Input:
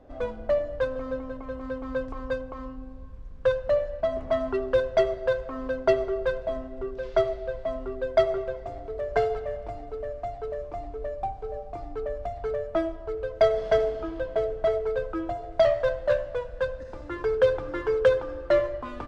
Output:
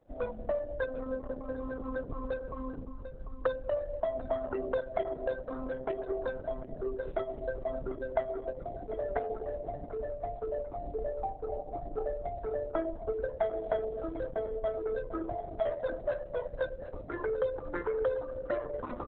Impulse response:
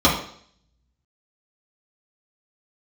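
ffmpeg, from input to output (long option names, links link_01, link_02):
-filter_complex "[0:a]bandreject=frequency=60:width_type=h:width=6,bandreject=frequency=120:width_type=h:width=6,bandreject=frequency=180:width_type=h:width=6,bandreject=frequency=240:width_type=h:width=6,afftdn=noise_reduction=13:noise_floor=-38,acrossover=split=1300[link_01][link_02];[link_02]alimiter=level_in=5dB:limit=-24dB:level=0:latency=1:release=301,volume=-5dB[link_03];[link_01][link_03]amix=inputs=2:normalize=0,acompressor=threshold=-31dB:ratio=3,asplit=2[link_04][link_05];[link_05]adelay=745,lowpass=frequency=4900:poles=1,volume=-12.5dB,asplit=2[link_06][link_07];[link_07]adelay=745,lowpass=frequency=4900:poles=1,volume=0.27,asplit=2[link_08][link_09];[link_09]adelay=745,lowpass=frequency=4900:poles=1,volume=0.27[link_10];[link_06][link_08][link_10]amix=inputs=3:normalize=0[link_11];[link_04][link_11]amix=inputs=2:normalize=0" -ar 48000 -c:a libopus -b:a 6k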